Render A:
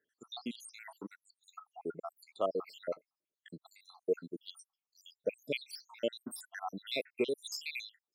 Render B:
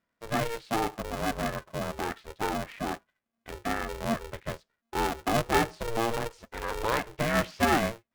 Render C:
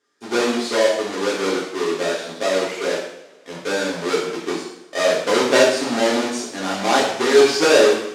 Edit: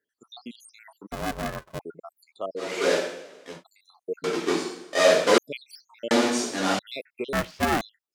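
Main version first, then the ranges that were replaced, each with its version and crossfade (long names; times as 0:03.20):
A
0:01.12–0:01.79: punch in from B
0:02.68–0:03.52: punch in from C, crossfade 0.24 s
0:04.24–0:05.38: punch in from C
0:06.11–0:06.79: punch in from C
0:07.33–0:07.81: punch in from B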